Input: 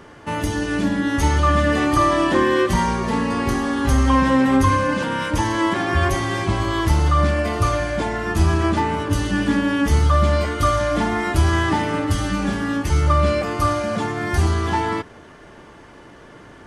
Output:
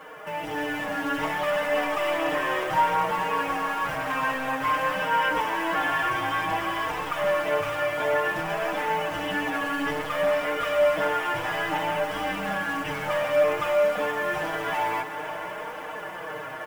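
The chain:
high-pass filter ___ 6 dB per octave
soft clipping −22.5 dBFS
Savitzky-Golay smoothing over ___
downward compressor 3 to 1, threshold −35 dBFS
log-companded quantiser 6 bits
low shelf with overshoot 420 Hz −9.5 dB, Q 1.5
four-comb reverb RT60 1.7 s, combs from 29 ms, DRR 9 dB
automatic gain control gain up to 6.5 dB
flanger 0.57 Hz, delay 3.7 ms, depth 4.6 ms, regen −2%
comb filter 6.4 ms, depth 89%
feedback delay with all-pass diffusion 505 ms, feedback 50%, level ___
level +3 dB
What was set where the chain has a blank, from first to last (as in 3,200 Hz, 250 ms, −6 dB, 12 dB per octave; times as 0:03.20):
140 Hz, 25 samples, −11.5 dB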